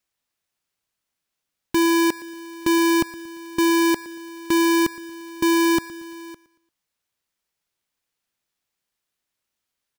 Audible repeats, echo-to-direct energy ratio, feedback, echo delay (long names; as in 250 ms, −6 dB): 3, −18.5 dB, 40%, 115 ms